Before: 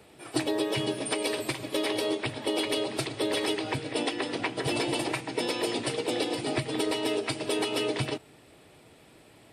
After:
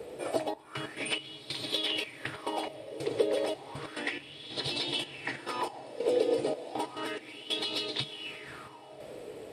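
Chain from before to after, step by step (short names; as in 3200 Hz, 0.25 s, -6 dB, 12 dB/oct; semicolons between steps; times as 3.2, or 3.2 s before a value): compressor 12:1, threshold -37 dBFS, peak gain reduction 15 dB; step gate "xxxxx..x.xx..." 140 bpm -24 dB; resonator 73 Hz, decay 0.16 s, mix 50%; on a send: diffused feedback echo 0.549 s, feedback 46%, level -11 dB; on the sum: LFO bell 0.32 Hz 470–4000 Hz +18 dB; gain +4.5 dB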